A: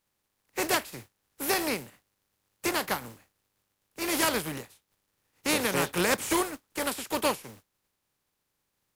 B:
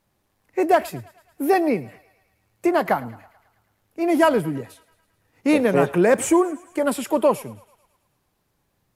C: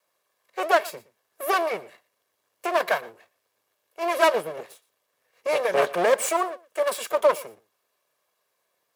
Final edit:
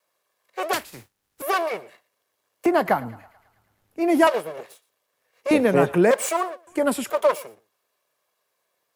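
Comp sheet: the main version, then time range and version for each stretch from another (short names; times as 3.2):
C
0.73–1.42 from A
2.66–4.27 from B
5.51–6.11 from B
6.67–7.1 from B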